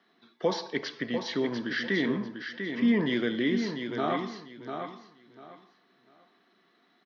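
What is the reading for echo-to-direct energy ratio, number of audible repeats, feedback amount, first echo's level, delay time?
-7.0 dB, 3, 23%, -7.0 dB, 0.695 s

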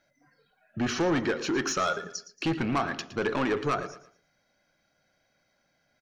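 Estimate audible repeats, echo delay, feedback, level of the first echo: 3, 0.114 s, 31%, -14.0 dB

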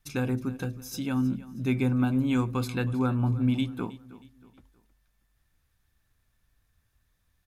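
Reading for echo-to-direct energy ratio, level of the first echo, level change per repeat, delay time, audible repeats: -17.5 dB, -18.0 dB, -8.0 dB, 0.317 s, 3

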